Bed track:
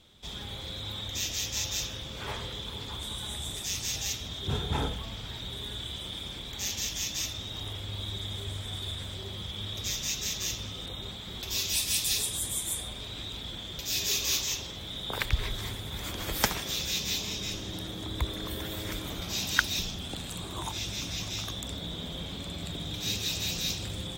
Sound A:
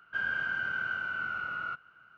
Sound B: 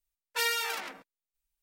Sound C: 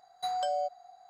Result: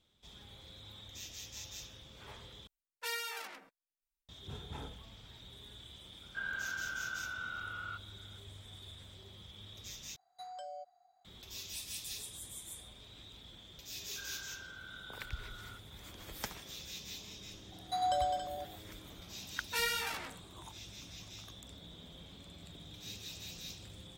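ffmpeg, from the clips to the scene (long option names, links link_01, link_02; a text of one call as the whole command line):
ffmpeg -i bed.wav -i cue0.wav -i cue1.wav -i cue2.wav -filter_complex "[2:a]asplit=2[link_01][link_02];[1:a]asplit=2[link_03][link_04];[3:a]asplit=2[link_05][link_06];[0:a]volume=-15dB[link_07];[link_06]aecho=1:1:99.13|207|277:0.562|0.447|0.398[link_08];[link_02]flanger=delay=16:depth=6.2:speed=1.3[link_09];[link_07]asplit=3[link_10][link_11][link_12];[link_10]atrim=end=2.674[link_13];[link_01]atrim=end=1.62,asetpts=PTS-STARTPTS,volume=-9.5dB[link_14];[link_11]atrim=start=4.286:end=10.164[link_15];[link_05]atrim=end=1.09,asetpts=PTS-STARTPTS,volume=-15dB[link_16];[link_12]atrim=start=11.246[link_17];[link_03]atrim=end=2.17,asetpts=PTS-STARTPTS,volume=-7.5dB,afade=type=in:duration=0.004:curve=hsin,afade=type=out:start_time=2.166:duration=0.004:curve=hsin,adelay=6220[link_18];[link_04]atrim=end=2.17,asetpts=PTS-STARTPTS,volume=-18dB,afade=type=in:duration=0.004:curve=hsin,afade=type=out:start_time=2.166:duration=0.004:curve=hsin,adelay=14030[link_19];[link_08]atrim=end=1.09,asetpts=PTS-STARTPTS,volume=-2.5dB,afade=type=in:duration=0.004:curve=hsin,afade=type=out:start_time=1.086:duration=0.004:curve=hsin,adelay=17690[link_20];[link_09]atrim=end=1.62,asetpts=PTS-STARTPTS,volume=-1.5dB,afade=type=in:duration=0.004:curve=hsin,afade=type=out:start_time=1.616:duration=0.004:curve=hsin,adelay=19370[link_21];[link_13][link_14]acrossfade=duration=0.004:curve1=hsin:curve2=hsin[link_22];[link_22][link_15]acrossfade=duration=0.004:curve1=hsin:curve2=hsin[link_23];[link_23][link_16]acrossfade=duration=0.004:curve1=hsin:curve2=hsin[link_24];[link_24][link_17]acrossfade=duration=0.004:curve1=hsin:curve2=hsin[link_25];[link_25][link_18][link_19][link_20][link_21]amix=inputs=5:normalize=0" out.wav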